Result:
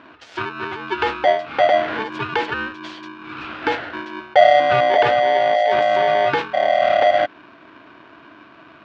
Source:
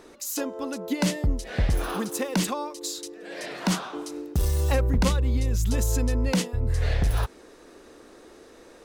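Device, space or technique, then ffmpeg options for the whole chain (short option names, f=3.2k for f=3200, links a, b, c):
ring modulator pedal into a guitar cabinet: -filter_complex "[0:a]asettb=1/sr,asplit=3[a][b][c];[a]atrim=end=4.204[d];[b]atrim=start=4.2:end=4.6,asetpts=PTS-STARTPTS,afade=t=in:d=0.004:c=qsin,afade=t=out:st=0.396:d=0.004:c=qsin,aecho=1:1:1.4:0.91,atrim=end_sample=17640[e];[c]atrim=start=4.596[f];[d][e]acrossfade=d=0.004:c1=hsin:c2=qsin[g];[g][f]acrossfade=d=0.004:c1=qsin:c2=hsin,aeval=exprs='val(0)*sgn(sin(2*PI*660*n/s))':c=same,highpass=95,equalizer=f=180:t=q:w=4:g=-6,equalizer=f=300:t=q:w=4:g=9,equalizer=f=660:t=q:w=4:g=9,equalizer=f=1.5k:t=q:w=4:g=10,equalizer=f=2.7k:t=q:w=4:g=4,lowpass=f=3.6k:w=0.5412,lowpass=f=3.6k:w=1.3066,volume=1dB"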